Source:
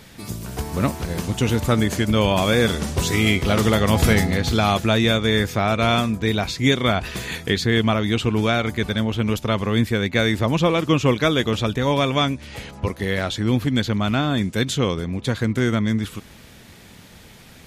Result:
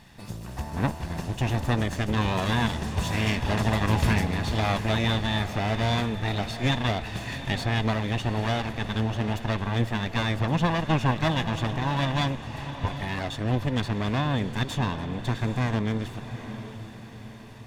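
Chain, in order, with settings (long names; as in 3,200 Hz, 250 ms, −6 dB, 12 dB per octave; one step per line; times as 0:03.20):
lower of the sound and its delayed copy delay 1.1 ms
low-pass filter 3,800 Hz 6 dB per octave
on a send: feedback delay with all-pass diffusion 779 ms, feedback 47%, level −11 dB
on the sum: level −4.5 dB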